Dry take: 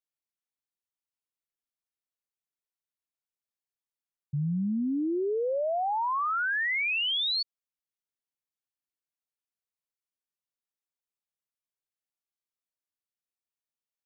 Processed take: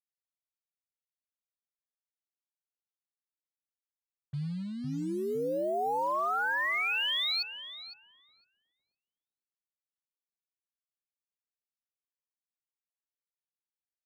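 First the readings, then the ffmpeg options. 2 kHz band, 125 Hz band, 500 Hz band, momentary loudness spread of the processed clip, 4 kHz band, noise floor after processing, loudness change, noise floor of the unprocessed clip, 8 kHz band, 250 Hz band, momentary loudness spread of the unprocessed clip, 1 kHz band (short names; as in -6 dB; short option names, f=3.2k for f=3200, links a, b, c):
-2.0 dB, -4.5 dB, -2.5 dB, 14 LU, -2.5 dB, under -85 dBFS, -2.5 dB, under -85 dBFS, n/a, -6.0 dB, 6 LU, -1.5 dB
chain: -filter_complex "[0:a]equalizer=f=230:t=o:w=1:g=-7,acrusher=bits=7:mix=0:aa=0.5,asplit=2[a][b];[b]adelay=508,lowpass=f=1.2k:p=1,volume=-4dB,asplit=2[c][d];[d]adelay=508,lowpass=f=1.2k:p=1,volume=0.29,asplit=2[e][f];[f]adelay=508,lowpass=f=1.2k:p=1,volume=0.29,asplit=2[g][h];[h]adelay=508,lowpass=f=1.2k:p=1,volume=0.29[i];[c][e][g][i]amix=inputs=4:normalize=0[j];[a][j]amix=inputs=2:normalize=0,volume=-2.5dB"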